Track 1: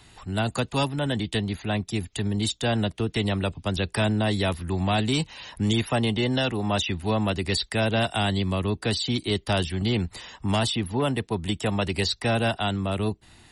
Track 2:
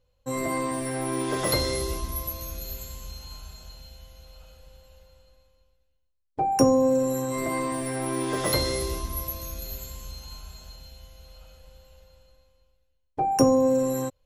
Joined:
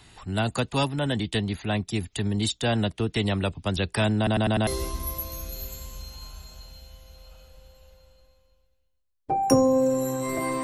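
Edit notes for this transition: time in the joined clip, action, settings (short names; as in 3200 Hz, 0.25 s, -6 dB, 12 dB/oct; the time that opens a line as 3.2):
track 1
4.17 stutter in place 0.10 s, 5 plays
4.67 switch to track 2 from 1.76 s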